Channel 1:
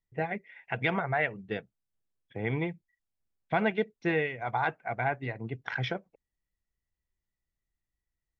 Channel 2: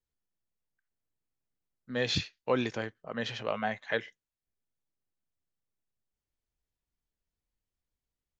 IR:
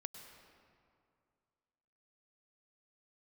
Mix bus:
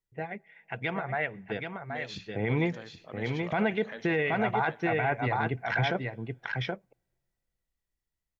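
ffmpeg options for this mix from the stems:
-filter_complex "[0:a]dynaudnorm=f=300:g=13:m=11.5dB,volume=-5dB,asplit=3[a][b][c];[b]volume=-22.5dB[d];[c]volume=-5.5dB[e];[1:a]acompressor=threshold=-35dB:ratio=3,volume=-5.5dB,asplit=2[f][g];[g]volume=-7.5dB[h];[2:a]atrim=start_sample=2205[i];[d][i]afir=irnorm=-1:irlink=0[j];[e][h]amix=inputs=2:normalize=0,aecho=0:1:776:1[k];[a][f][j][k]amix=inputs=4:normalize=0,alimiter=limit=-18dB:level=0:latency=1:release=31"

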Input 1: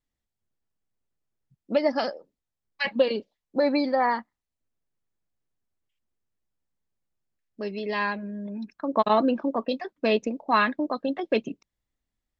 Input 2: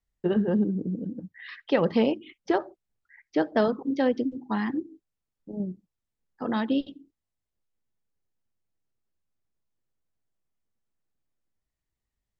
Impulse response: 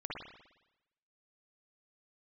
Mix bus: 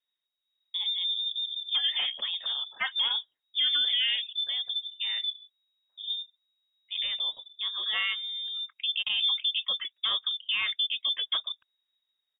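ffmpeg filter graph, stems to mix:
-filter_complex "[0:a]volume=-1dB[a];[1:a]equalizer=f=1k:w=1.5:g=-3,alimiter=limit=-21dB:level=0:latency=1:release=86,adelay=500,volume=-2.5dB[b];[a][b]amix=inputs=2:normalize=0,lowpass=f=3.2k:t=q:w=0.5098,lowpass=f=3.2k:t=q:w=0.6013,lowpass=f=3.2k:t=q:w=0.9,lowpass=f=3.2k:t=q:w=2.563,afreqshift=-3800,alimiter=limit=-19dB:level=0:latency=1:release=46"

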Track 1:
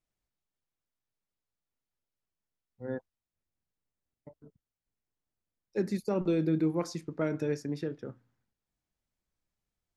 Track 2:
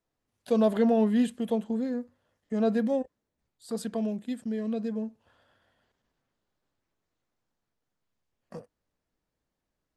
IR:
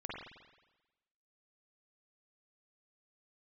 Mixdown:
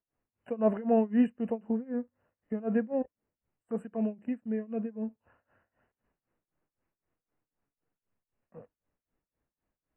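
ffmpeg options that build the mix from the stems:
-filter_complex "[0:a]acompressor=threshold=-34dB:ratio=8,flanger=delay=7.9:depth=3.6:regen=40:speed=0.84:shape=triangular,volume=-8dB[a];[1:a]lowpass=2.5k,volume=1dB,asplit=2[b][c];[c]apad=whole_len=439303[d];[a][d]sidechaingate=range=-40dB:threshold=-56dB:ratio=16:detection=peak[e];[e][b]amix=inputs=2:normalize=0,afftfilt=real='re*(1-between(b*sr/4096,3000,7400))':imag='im*(1-between(b*sr/4096,3000,7400))':win_size=4096:overlap=0.75,tremolo=f=3.9:d=0.92"

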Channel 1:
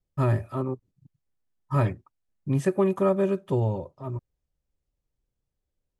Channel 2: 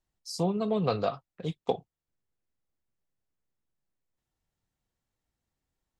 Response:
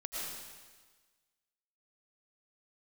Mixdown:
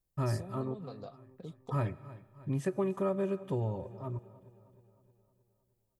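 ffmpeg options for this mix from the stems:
-filter_complex "[0:a]volume=-5dB,asplit=3[a][b][c];[b]volume=-22dB[d];[c]volume=-21.5dB[e];[1:a]acompressor=threshold=-38dB:ratio=4,equalizer=f=2.9k:w=0.38:g=-10,aexciter=amount=2.4:drive=5.4:freq=3.8k,volume=-4dB[f];[2:a]atrim=start_sample=2205[g];[d][g]afir=irnorm=-1:irlink=0[h];[e]aecho=0:1:311|622|933|1244|1555|1866|2177|2488:1|0.54|0.292|0.157|0.085|0.0459|0.0248|0.0134[i];[a][f][h][i]amix=inputs=4:normalize=0,acompressor=threshold=-35dB:ratio=1.5"

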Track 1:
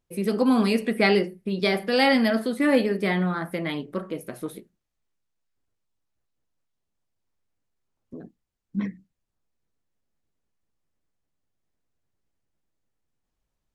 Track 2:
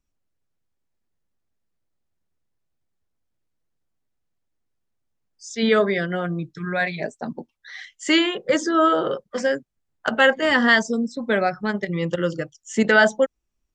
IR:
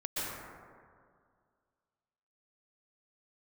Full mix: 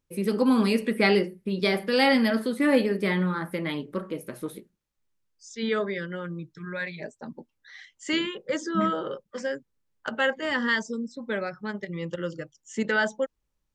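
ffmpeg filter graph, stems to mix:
-filter_complex "[0:a]volume=-1dB[a];[1:a]volume=-8.5dB[b];[a][b]amix=inputs=2:normalize=0,asuperstop=centerf=700:order=4:qfactor=5.9"

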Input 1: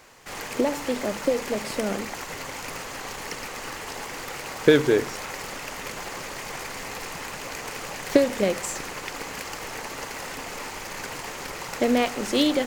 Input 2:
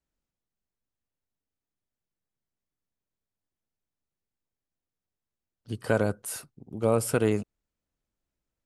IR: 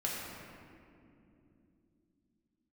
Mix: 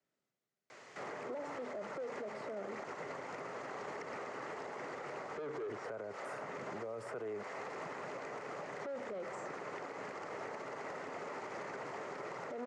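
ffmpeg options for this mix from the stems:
-filter_complex "[0:a]asoftclip=type=tanh:threshold=-21dB,adelay=700,volume=-6dB[a];[1:a]volume=0dB[b];[a][b]amix=inputs=2:normalize=0,acrossover=split=160|410|1500[c][d][e][f];[c]acompressor=threshold=-49dB:ratio=4[g];[d]acompressor=threshold=-50dB:ratio=4[h];[e]acompressor=threshold=-34dB:ratio=4[i];[f]acompressor=threshold=-58dB:ratio=4[j];[g][h][i][j]amix=inputs=4:normalize=0,highpass=f=120:w=0.5412,highpass=f=120:w=1.3066,equalizer=f=400:t=q:w=4:g=7,equalizer=f=620:t=q:w=4:g=7,equalizer=f=1.3k:t=q:w=4:g=5,equalizer=f=2k:t=q:w=4:g=6,lowpass=f=7.5k:w=0.5412,lowpass=f=7.5k:w=1.3066,alimiter=level_in=11dB:limit=-24dB:level=0:latency=1:release=75,volume=-11dB"

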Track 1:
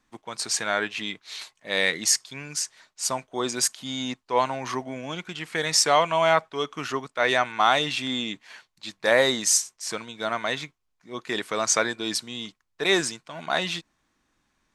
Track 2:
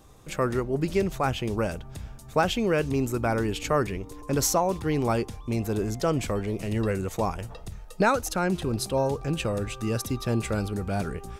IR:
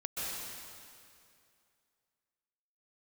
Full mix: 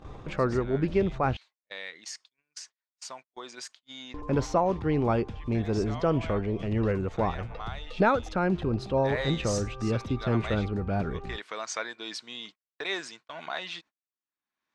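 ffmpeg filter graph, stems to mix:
-filter_complex "[0:a]highpass=f=560:p=1,volume=-8.5dB,afade=t=in:st=8.97:d=0.31:silence=0.266073[a];[1:a]aemphasis=mode=reproduction:type=75kf,volume=0dB,asplit=3[b][c][d];[b]atrim=end=1.37,asetpts=PTS-STARTPTS,afade=t=out:st=1.366:d=0.004:c=hsin[e];[c]atrim=start=1.37:end=4.14,asetpts=PTS-STARTPTS,volume=0[f];[d]atrim=start=4.14,asetpts=PTS-STARTPTS,afade=t=in:d=0.004:c=hsin[g];[e][f][g]concat=n=3:v=0:a=1[h];[a][h]amix=inputs=2:normalize=0,agate=range=-41dB:threshold=-53dB:ratio=16:detection=peak,lowpass=4.5k,acompressor=mode=upward:threshold=-31dB:ratio=2.5"

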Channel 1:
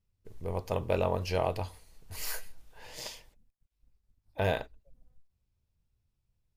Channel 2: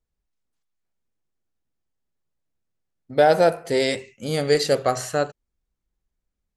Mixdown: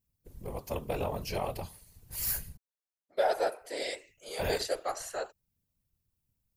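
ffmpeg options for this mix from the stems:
-filter_complex "[0:a]highshelf=f=8.6k:g=10,volume=1.5dB,asplit=3[a][b][c];[a]atrim=end=2.57,asetpts=PTS-STARTPTS,afade=t=out:st=2.566:d=0.004:c=hsin[d];[b]atrim=start=2.57:end=3.2,asetpts=PTS-STARTPTS,volume=0[e];[c]atrim=start=3.2,asetpts=PTS-STARTPTS,afade=t=in:d=0.004:c=hsin[f];[d][e][f]concat=n=3:v=0:a=1[g];[1:a]highpass=f=480:w=0.5412,highpass=f=480:w=1.3066,volume=-6dB[h];[g][h]amix=inputs=2:normalize=0,highshelf=f=8.1k:g=7.5,afftfilt=real='hypot(re,im)*cos(2*PI*random(0))':imag='hypot(re,im)*sin(2*PI*random(1))':win_size=512:overlap=0.75"

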